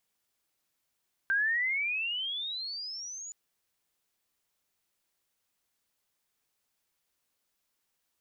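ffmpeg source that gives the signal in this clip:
-f lavfi -i "aevalsrc='pow(10,(-24-15.5*t/2.02)/20)*sin(2*PI*1560*2.02/(26*log(2)/12)*(exp(26*log(2)/12*t/2.02)-1))':d=2.02:s=44100"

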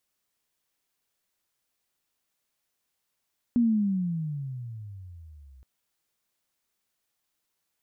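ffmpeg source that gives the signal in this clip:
-f lavfi -i "aevalsrc='pow(10,(-18-31*t/2.07)/20)*sin(2*PI*244*2.07/(-23.5*log(2)/12)*(exp(-23.5*log(2)/12*t/2.07)-1))':d=2.07:s=44100"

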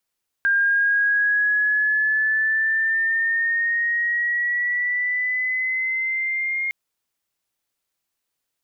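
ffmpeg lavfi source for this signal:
-f lavfi -i "aevalsrc='pow(10,(-15.5-6*t/6.26)/20)*sin(2*PI*1600*6.26/(5*log(2)/12)*(exp(5*log(2)/12*t/6.26)-1))':d=6.26:s=44100"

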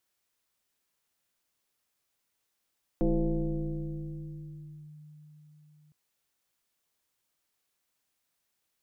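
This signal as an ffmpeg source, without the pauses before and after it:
-f lavfi -i "aevalsrc='0.0841*pow(10,-3*t/4.69)*sin(2*PI*151*t+1.9*clip(1-t/1.93,0,1)*sin(2*PI*1.19*151*t))':d=2.91:s=44100"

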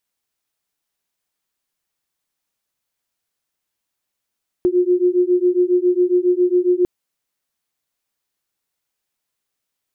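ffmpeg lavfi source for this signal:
-f lavfi -i "aevalsrc='0.158*(sin(2*PI*355*t)+sin(2*PI*362.3*t))':d=2.2:s=44100"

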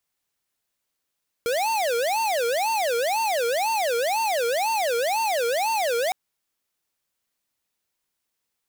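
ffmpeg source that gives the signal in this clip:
-f lavfi -i "aevalsrc='0.0668*(2*lt(mod((685*t-221/(2*PI*2)*sin(2*PI*2*t)),1),0.5)-1)':d=4.66:s=44100"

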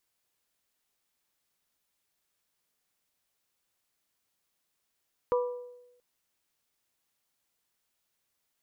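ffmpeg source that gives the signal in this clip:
-f lavfi -i "aevalsrc='0.0794*pow(10,-3*t/0.96)*sin(2*PI*491*t)+0.0376*pow(10,-3*t/0.591)*sin(2*PI*982*t)+0.0178*pow(10,-3*t/0.52)*sin(2*PI*1178.4*t)':d=0.68:s=44100"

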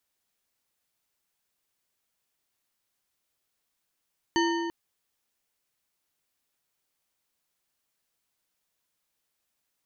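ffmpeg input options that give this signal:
-f lavfi -i "aevalsrc='0.075*pow(10,-3*t/2.4)*sin(2*PI*337*t)+0.0531*pow(10,-3*t/1.77)*sin(2*PI*929.1*t)+0.0376*pow(10,-3*t/1.447)*sin(2*PI*1821.1*t)+0.0266*pow(10,-3*t/1.244)*sin(2*PI*3010.4*t)+0.0188*pow(10,-3*t/1.103)*sin(2*PI*4495.6*t)+0.0133*pow(10,-3*t/0.998)*sin(2*PI*6281.7*t)':d=0.34:s=44100"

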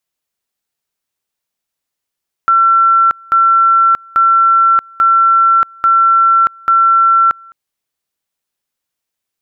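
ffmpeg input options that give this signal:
-f lavfi -i "aevalsrc='pow(10,(-6-28.5*gte(mod(t,0.84),0.63))/20)*sin(2*PI*1350*t)':d=5.04:s=44100"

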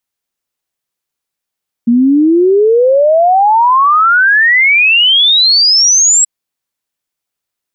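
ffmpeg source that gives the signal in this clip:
-f lavfi -i "aevalsrc='0.562*clip(min(t,4.38-t)/0.01,0,1)*sin(2*PI*230*4.38/log(7800/230)*(exp(log(7800/230)*t/4.38)-1))':d=4.38:s=44100"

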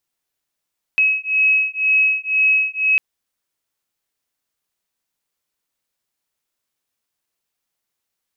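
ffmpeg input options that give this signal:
-f lavfi -i "aevalsrc='0.141*(sin(2*PI*2560*t)+sin(2*PI*2562*t))':d=2:s=44100"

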